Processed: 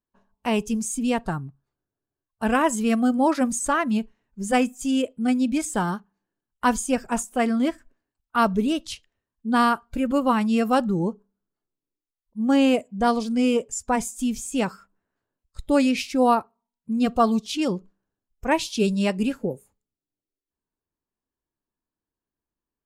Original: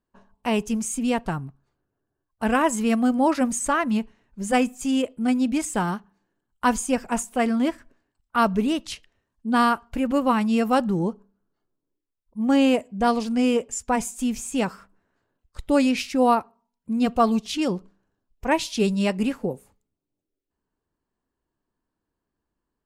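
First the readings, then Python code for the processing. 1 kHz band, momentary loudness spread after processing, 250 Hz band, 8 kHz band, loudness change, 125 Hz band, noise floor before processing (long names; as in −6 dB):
0.0 dB, 10 LU, 0.0 dB, 0.0 dB, 0.0 dB, 0.0 dB, −84 dBFS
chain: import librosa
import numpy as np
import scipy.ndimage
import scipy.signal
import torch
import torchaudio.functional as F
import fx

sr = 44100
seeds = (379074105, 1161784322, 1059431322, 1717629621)

y = fx.noise_reduce_blind(x, sr, reduce_db=9)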